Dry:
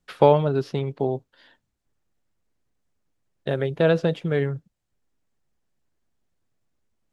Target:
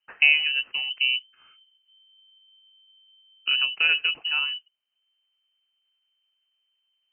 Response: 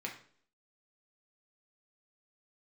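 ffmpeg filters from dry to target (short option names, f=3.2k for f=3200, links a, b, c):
-filter_complex "[0:a]asettb=1/sr,asplit=3[a][b][c];[a]atrim=end=0.904[d];[b]atrim=start=0.9:end=3.65,asetpts=PTS-STARTPTS,afade=t=in:d=0.004:c=qsin,afade=t=out:st=2.746:d=0.004:c=qsin,aemphasis=mode=reproduction:type=bsi[e];[c]atrim=start=3.646[f];[d][e]acrossfade=d=0.004:c1=hsin:c2=qsin[g];[g][f]acrossfade=d=0.004:c1=qsin:c2=hsin,lowpass=f=2.6k:t=q:w=0.5098,lowpass=f=2.6k:t=q:w=0.6013,lowpass=f=2.6k:t=q:w=0.9,lowpass=f=2.6k:t=q:w=2.563,afreqshift=-3100,volume=-3dB"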